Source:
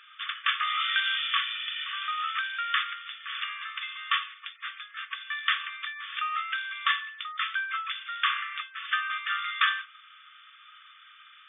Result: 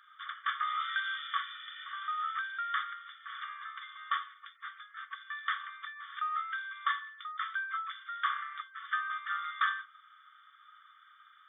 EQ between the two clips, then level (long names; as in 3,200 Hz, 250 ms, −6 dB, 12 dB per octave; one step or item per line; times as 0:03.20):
phaser with its sweep stopped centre 1,100 Hz, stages 4
−2.5 dB